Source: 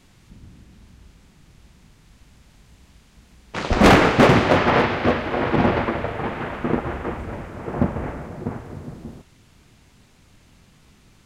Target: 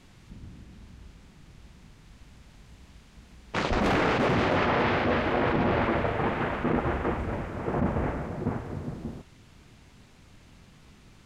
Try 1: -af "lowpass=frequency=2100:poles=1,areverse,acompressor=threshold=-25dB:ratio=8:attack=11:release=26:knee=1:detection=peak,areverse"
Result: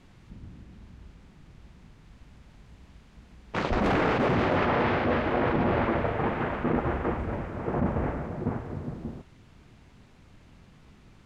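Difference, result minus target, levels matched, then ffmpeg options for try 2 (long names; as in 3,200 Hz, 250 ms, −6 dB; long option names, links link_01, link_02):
8,000 Hz band −6.5 dB
-af "lowpass=frequency=6000:poles=1,areverse,acompressor=threshold=-25dB:ratio=8:attack=11:release=26:knee=1:detection=peak,areverse"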